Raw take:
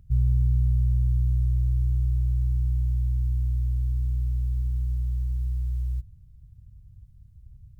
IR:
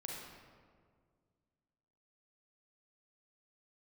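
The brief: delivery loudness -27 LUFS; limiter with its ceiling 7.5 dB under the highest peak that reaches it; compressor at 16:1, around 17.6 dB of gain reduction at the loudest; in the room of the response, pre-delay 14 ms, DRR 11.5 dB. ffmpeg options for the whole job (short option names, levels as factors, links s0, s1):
-filter_complex "[0:a]acompressor=threshold=0.0158:ratio=16,alimiter=level_in=3.98:limit=0.0631:level=0:latency=1,volume=0.251,asplit=2[s0][s1];[1:a]atrim=start_sample=2205,adelay=14[s2];[s1][s2]afir=irnorm=-1:irlink=0,volume=0.299[s3];[s0][s3]amix=inputs=2:normalize=0,volume=8.91"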